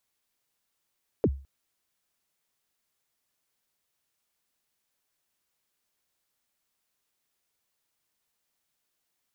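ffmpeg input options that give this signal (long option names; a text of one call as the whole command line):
ffmpeg -f lavfi -i "aevalsrc='0.158*pow(10,-3*t/0.36)*sin(2*PI*(540*0.051/log(68/540)*(exp(log(68/540)*min(t,0.051)/0.051)-1)+68*max(t-0.051,0)))':duration=0.21:sample_rate=44100" out.wav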